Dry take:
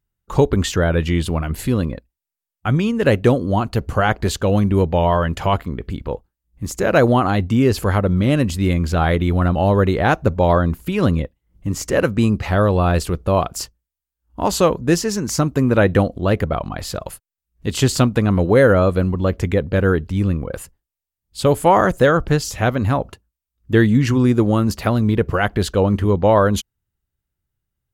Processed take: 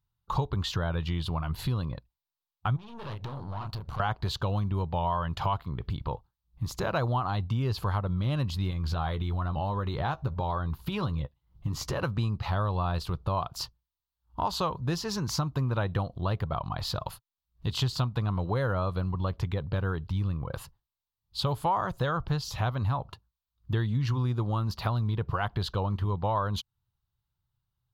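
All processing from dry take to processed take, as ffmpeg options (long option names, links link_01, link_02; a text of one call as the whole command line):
ffmpeg -i in.wav -filter_complex "[0:a]asettb=1/sr,asplit=3[link_01][link_02][link_03];[link_01]atrim=end=2.764[link_04];[link_02]atrim=start=2.76:end=4,asetpts=PTS-STARTPTS,afade=type=in:duration=0.004:curve=qsin,afade=type=out:start_time=1.236:duration=0.004:curve=qsin,asplit=2[link_05][link_06];[link_06]adelay=29,volume=-7dB[link_07];[link_05][link_07]amix=inputs=2:normalize=0,atrim=end_sample=54684,acompressor=threshold=-24dB:ratio=10:attack=3.2:release=140:knee=1:detection=peak,aeval=exprs='(tanh(31.6*val(0)+0.7)-tanh(0.7))/31.6':channel_layout=same[link_08];[link_03]atrim=start=3.996[link_09];[link_04][link_08]acrossfade=duration=0.004:curve1=hsin:curve2=qsin[link_10];[link_10][link_09]acrossfade=duration=0.004:curve1=qsin:curve2=hsin,asettb=1/sr,asplit=3[link_11][link_12][link_13];[link_11]atrim=end=8.704[link_14];[link_12]atrim=start=8.7:end=12.01,asetpts=PTS-STARTPTS,afade=type=in:duration=0.004:curve=qsin,afade=type=out:start_time=3.306:duration=0.004:curve=qsin,acompressor=threshold=-17dB:ratio=3:attack=3.2:release=140:knee=1:detection=peak,asplit=2[link_15][link_16];[link_16]adelay=14,volume=-11dB[link_17];[link_15][link_17]amix=inputs=2:normalize=0,atrim=end_sample=145971[link_18];[link_13]atrim=start=12.006[link_19];[link_14][link_18]acrossfade=duration=0.004:curve1=hsin:curve2=qsin[link_20];[link_20][link_19]acrossfade=duration=0.004:curve1=qsin:curve2=hsin,equalizer=frequency=125:width_type=o:width=1:gain=9,equalizer=frequency=250:width_type=o:width=1:gain=-7,equalizer=frequency=500:width_type=o:width=1:gain=-5,equalizer=frequency=1000:width_type=o:width=1:gain=11,equalizer=frequency=2000:width_type=o:width=1:gain=-7,equalizer=frequency=4000:width_type=o:width=1:gain=11,equalizer=frequency=8000:width_type=o:width=1:gain=-11,acompressor=threshold=-23dB:ratio=3,volume=-5.5dB" out.wav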